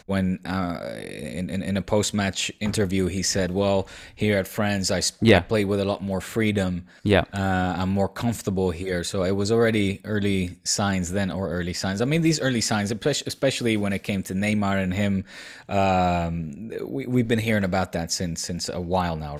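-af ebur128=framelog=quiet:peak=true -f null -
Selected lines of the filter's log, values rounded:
Integrated loudness:
  I:         -24.2 LUFS
  Threshold: -34.2 LUFS
Loudness range:
  LRA:         2.6 LU
  Threshold: -44.0 LUFS
  LRA low:   -25.1 LUFS
  LRA high:  -22.5 LUFS
True peak:
  Peak:       -3.3 dBFS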